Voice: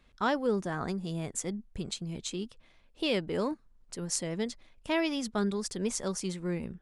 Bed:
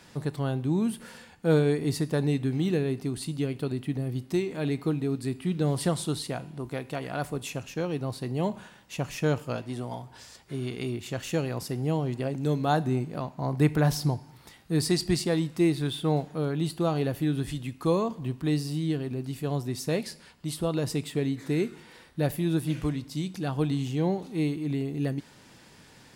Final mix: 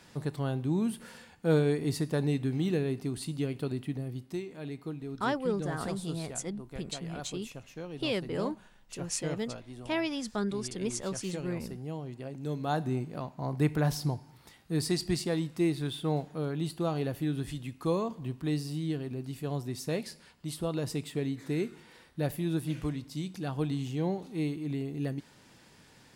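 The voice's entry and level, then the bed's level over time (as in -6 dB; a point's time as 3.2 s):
5.00 s, -2.0 dB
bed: 3.77 s -3 dB
4.53 s -11 dB
12.2 s -11 dB
12.87 s -4.5 dB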